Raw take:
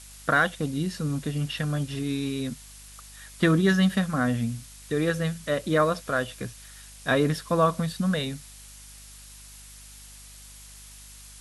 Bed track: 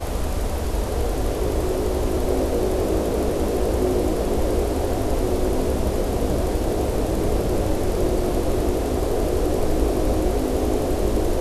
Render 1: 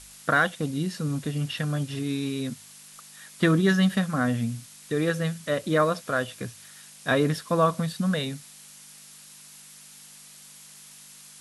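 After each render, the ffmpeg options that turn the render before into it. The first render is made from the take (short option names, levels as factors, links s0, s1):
-af "bandreject=f=50:t=h:w=4,bandreject=f=100:t=h:w=4"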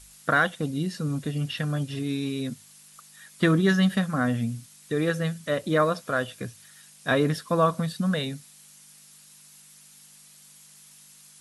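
-af "afftdn=nr=6:nf=-49"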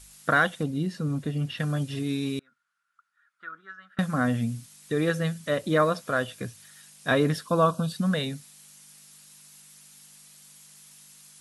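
-filter_complex "[0:a]asettb=1/sr,asplit=3[s0][s1][s2];[s0]atrim=end=0.634[s3];[s1]atrim=start=0.63:end=1.6,asetpts=PTS-STARTPTS,afade=t=in:d=0.004:c=qsin,afade=t=out:st=0.966:d=0.004:c=qsin,highshelf=f=2900:g=-7.5[s4];[s2]atrim=start=1.596[s5];[s3][s4]acrossfade=d=0.004:c1=hsin:c2=qsin[s6];[s6][s5]acrossfade=d=0.004:c1=qsin:c2=hsin,asettb=1/sr,asplit=3[s7][s8][s9];[s7]atrim=end=2.394[s10];[s8]atrim=start=2.39:end=3.99,asetpts=PTS-STARTPTS,afade=t=in:d=0.004:c=qsin,afade=t=out:st=1.596:d=0.004:c=qsin,bandpass=f=1400:t=q:w=16[s11];[s9]atrim=start=3.986[s12];[s10][s11]acrossfade=d=0.004:c1=hsin:c2=qsin[s13];[s13][s12]acrossfade=d=0.004:c1=qsin:c2=hsin,asettb=1/sr,asplit=3[s14][s15][s16];[s14]atrim=end=7.474[s17];[s15]atrim=start=7.47:end=7.92,asetpts=PTS-STARTPTS,afade=t=in:d=0.004:c=qsin,afade=t=out:st=0.446:d=0.004:c=qsin,asuperstop=centerf=2000:order=20:qfactor=2.5[s18];[s16]atrim=start=7.916[s19];[s17][s18]acrossfade=d=0.004:c1=hsin:c2=qsin[s20];[s20][s19]acrossfade=d=0.004:c1=qsin:c2=hsin"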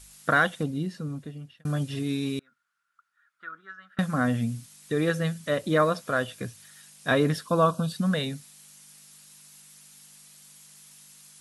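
-filter_complex "[0:a]asplit=2[s0][s1];[s0]atrim=end=1.65,asetpts=PTS-STARTPTS,afade=t=out:st=0.62:d=1.03[s2];[s1]atrim=start=1.65,asetpts=PTS-STARTPTS,afade=t=in:d=0.004:c=hsin[s3];[s2][s3]concat=n=2:v=0:a=1"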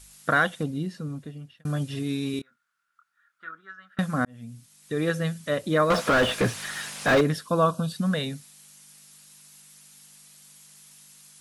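-filter_complex "[0:a]asettb=1/sr,asplit=3[s0][s1][s2];[s0]atrim=end=2.314[s3];[s1]atrim=start=2.31:end=3.51,asetpts=PTS-STARTPTS,afade=t=in:d=0.004:c=qsin,afade=t=out:st=1.196:d=0.004:c=qsin,asplit=2[s4][s5];[s5]adelay=25,volume=0.531[s6];[s4][s6]amix=inputs=2:normalize=0,atrim=end_sample=52920[s7];[s2]atrim=start=3.506[s8];[s3][s7]acrossfade=d=0.004:c1=hsin:c2=qsin[s9];[s9][s8]acrossfade=d=0.004:c1=qsin:c2=hsin,asettb=1/sr,asplit=3[s10][s11][s12];[s10]atrim=end=5.904[s13];[s11]atrim=start=5.9:end=7.21,asetpts=PTS-STARTPTS,afade=t=in:d=0.004:c=qsin,afade=t=out:st=1.306:d=0.004:c=qsin,asplit=2[s14][s15];[s15]highpass=f=720:p=1,volume=56.2,asoftclip=type=tanh:threshold=0.282[s16];[s14][s16]amix=inputs=2:normalize=0,lowpass=f=1300:p=1,volume=0.501[s17];[s12]atrim=start=7.206[s18];[s13][s17]acrossfade=d=0.004:c1=hsin:c2=qsin[s19];[s19][s18]acrossfade=d=0.004:c1=qsin:c2=hsin,asplit=2[s20][s21];[s20]atrim=end=4.25,asetpts=PTS-STARTPTS,afade=t=out:st=4.246:d=0.004:c=hsin[s22];[s21]atrim=start=4.25,asetpts=PTS-STARTPTS,afade=t=in:d=0.86[s23];[s22][s23]concat=n=2:v=0:a=1"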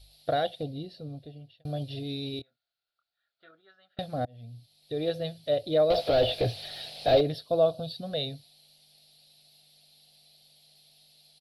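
-af "firequalizer=gain_entry='entry(120,0);entry(190,-17);entry(290,-7);entry(700,5);entry(1000,-21);entry(1700,-18);entry(2400,-9);entry(4200,5);entry(6600,-25);entry(12000,-10)':delay=0.05:min_phase=1"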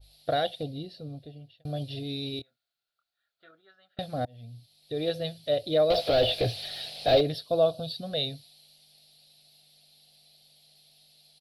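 -af "bandreject=f=900:w=27,adynamicequalizer=threshold=0.00794:dfrequency=1900:dqfactor=0.7:tfrequency=1900:tqfactor=0.7:attack=5:release=100:ratio=0.375:range=2:mode=boostabove:tftype=highshelf"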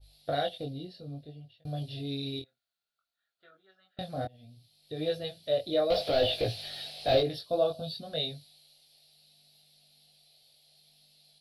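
-af "flanger=delay=19:depth=3.6:speed=0.62"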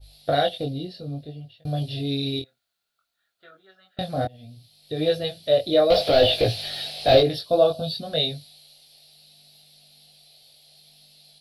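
-af "volume=2.82"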